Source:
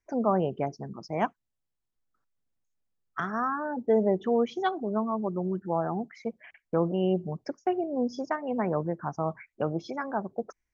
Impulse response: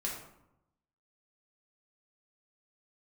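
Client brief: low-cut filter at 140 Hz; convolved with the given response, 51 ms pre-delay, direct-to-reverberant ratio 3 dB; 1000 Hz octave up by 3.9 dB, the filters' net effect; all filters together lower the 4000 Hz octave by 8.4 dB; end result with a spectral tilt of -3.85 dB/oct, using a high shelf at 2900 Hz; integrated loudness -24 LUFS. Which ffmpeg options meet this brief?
-filter_complex "[0:a]highpass=140,equalizer=f=1k:t=o:g=6.5,highshelf=f=2.9k:g=-7.5,equalizer=f=4k:t=o:g=-6.5,asplit=2[a][b];[1:a]atrim=start_sample=2205,adelay=51[c];[b][c]afir=irnorm=-1:irlink=0,volume=-5.5dB[d];[a][d]amix=inputs=2:normalize=0,volume=3dB"

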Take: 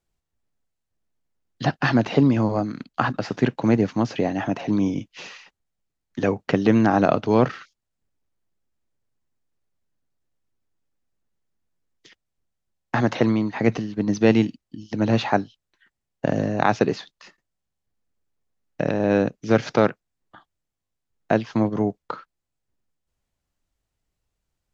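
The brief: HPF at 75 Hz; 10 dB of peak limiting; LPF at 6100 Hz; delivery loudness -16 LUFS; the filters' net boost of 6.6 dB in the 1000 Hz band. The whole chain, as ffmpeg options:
-af "highpass=75,lowpass=6.1k,equalizer=f=1k:t=o:g=9,volume=7dB,alimiter=limit=-1dB:level=0:latency=1"

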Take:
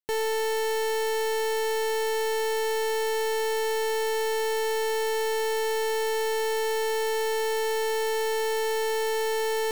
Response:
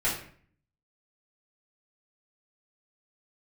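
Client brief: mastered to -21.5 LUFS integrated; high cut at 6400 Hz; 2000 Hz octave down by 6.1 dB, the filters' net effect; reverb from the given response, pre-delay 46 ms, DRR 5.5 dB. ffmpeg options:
-filter_complex "[0:a]lowpass=6.4k,equalizer=f=2k:t=o:g=-7,asplit=2[a][b];[1:a]atrim=start_sample=2205,adelay=46[c];[b][c]afir=irnorm=-1:irlink=0,volume=-15.5dB[d];[a][d]amix=inputs=2:normalize=0,volume=6dB"

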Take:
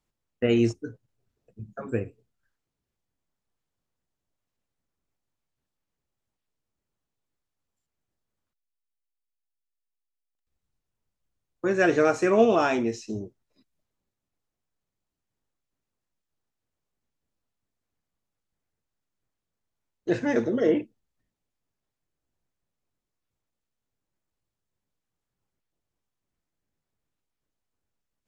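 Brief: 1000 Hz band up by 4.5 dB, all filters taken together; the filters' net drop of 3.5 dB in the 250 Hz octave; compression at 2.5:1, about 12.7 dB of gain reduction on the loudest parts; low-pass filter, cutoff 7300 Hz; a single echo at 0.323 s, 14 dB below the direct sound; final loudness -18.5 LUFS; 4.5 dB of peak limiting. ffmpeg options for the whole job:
-af "lowpass=7.3k,equalizer=f=250:t=o:g=-5.5,equalizer=f=1k:t=o:g=7,acompressor=threshold=-33dB:ratio=2.5,alimiter=limit=-23.5dB:level=0:latency=1,aecho=1:1:323:0.2,volume=18dB"

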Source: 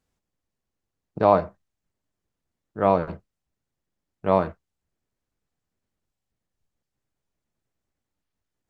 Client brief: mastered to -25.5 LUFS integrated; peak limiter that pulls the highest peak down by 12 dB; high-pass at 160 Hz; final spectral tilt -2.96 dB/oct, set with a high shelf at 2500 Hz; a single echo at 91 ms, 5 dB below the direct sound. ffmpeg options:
-af "highpass=160,highshelf=f=2.5k:g=7,alimiter=limit=-14.5dB:level=0:latency=1,aecho=1:1:91:0.562,volume=4dB"

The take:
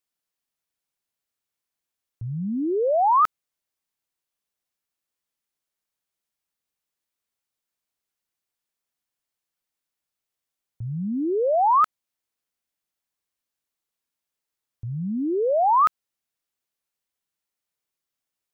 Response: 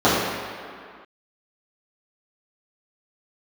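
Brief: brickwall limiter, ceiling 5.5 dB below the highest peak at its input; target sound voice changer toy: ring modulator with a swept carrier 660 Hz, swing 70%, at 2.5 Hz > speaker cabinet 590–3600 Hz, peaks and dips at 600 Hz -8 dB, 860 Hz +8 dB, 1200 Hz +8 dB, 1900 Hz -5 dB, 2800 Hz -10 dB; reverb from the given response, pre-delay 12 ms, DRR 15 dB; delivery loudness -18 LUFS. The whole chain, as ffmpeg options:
-filter_complex "[0:a]alimiter=limit=-18dB:level=0:latency=1,asplit=2[a][b];[1:a]atrim=start_sample=2205,adelay=12[c];[b][c]afir=irnorm=-1:irlink=0,volume=-40dB[d];[a][d]amix=inputs=2:normalize=0,aeval=exprs='val(0)*sin(2*PI*660*n/s+660*0.7/2.5*sin(2*PI*2.5*n/s))':c=same,highpass=590,equalizer=f=600:t=q:w=4:g=-8,equalizer=f=860:t=q:w=4:g=8,equalizer=f=1.2k:t=q:w=4:g=8,equalizer=f=1.9k:t=q:w=4:g=-5,equalizer=f=2.8k:t=q:w=4:g=-10,lowpass=f=3.6k:w=0.5412,lowpass=f=3.6k:w=1.3066,volume=7.5dB"

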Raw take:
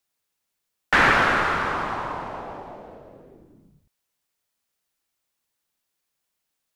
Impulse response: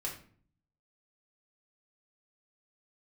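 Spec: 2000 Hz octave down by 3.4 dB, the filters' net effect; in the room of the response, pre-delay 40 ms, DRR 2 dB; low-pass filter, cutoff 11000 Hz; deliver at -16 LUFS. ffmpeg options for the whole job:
-filter_complex "[0:a]lowpass=11k,equalizer=f=2k:t=o:g=-4.5,asplit=2[a][b];[1:a]atrim=start_sample=2205,adelay=40[c];[b][c]afir=irnorm=-1:irlink=0,volume=-3.5dB[d];[a][d]amix=inputs=2:normalize=0,volume=6dB"

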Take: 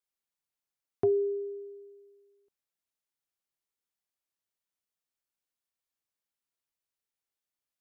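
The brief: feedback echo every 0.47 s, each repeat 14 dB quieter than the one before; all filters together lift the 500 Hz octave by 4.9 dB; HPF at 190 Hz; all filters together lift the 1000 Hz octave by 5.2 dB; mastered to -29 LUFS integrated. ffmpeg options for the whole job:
-af "highpass=190,equalizer=f=500:t=o:g=6.5,equalizer=f=1k:t=o:g=4,aecho=1:1:470|940:0.2|0.0399,volume=-2dB"

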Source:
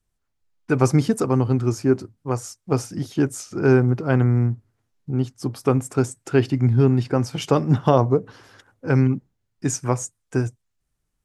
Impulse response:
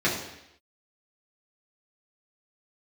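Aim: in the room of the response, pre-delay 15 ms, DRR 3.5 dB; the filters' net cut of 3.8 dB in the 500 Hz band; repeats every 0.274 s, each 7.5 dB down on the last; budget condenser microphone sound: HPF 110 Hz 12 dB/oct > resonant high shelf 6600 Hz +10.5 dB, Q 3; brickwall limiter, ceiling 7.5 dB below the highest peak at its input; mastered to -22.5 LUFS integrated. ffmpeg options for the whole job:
-filter_complex "[0:a]equalizer=f=500:t=o:g=-5,alimiter=limit=-11.5dB:level=0:latency=1,aecho=1:1:274|548|822|1096|1370:0.422|0.177|0.0744|0.0312|0.0131,asplit=2[a][b];[1:a]atrim=start_sample=2205,adelay=15[c];[b][c]afir=irnorm=-1:irlink=0,volume=-18dB[d];[a][d]amix=inputs=2:normalize=0,highpass=110,highshelf=f=6.6k:t=q:w=3:g=10.5,volume=-1.5dB"

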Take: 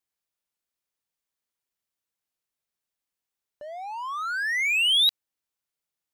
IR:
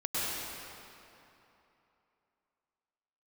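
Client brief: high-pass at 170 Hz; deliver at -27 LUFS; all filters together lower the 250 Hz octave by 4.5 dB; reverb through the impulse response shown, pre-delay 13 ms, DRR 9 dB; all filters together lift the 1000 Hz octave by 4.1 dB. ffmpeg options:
-filter_complex "[0:a]highpass=170,equalizer=f=250:t=o:g=-5.5,equalizer=f=1k:t=o:g=5.5,asplit=2[a][b];[1:a]atrim=start_sample=2205,adelay=13[c];[b][c]afir=irnorm=-1:irlink=0,volume=-17.5dB[d];[a][d]amix=inputs=2:normalize=0,volume=-5dB"

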